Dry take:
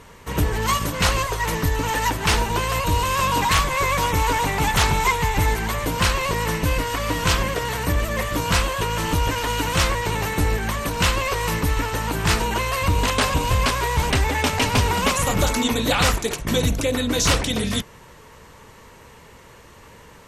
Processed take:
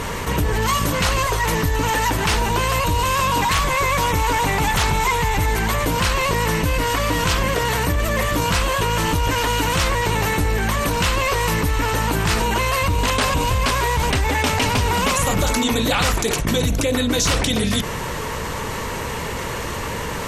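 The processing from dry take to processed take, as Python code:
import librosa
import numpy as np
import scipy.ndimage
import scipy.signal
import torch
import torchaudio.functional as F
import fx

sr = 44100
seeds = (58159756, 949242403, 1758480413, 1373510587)

y = fx.env_flatten(x, sr, amount_pct=70)
y = y * 10.0 ** (-2.0 / 20.0)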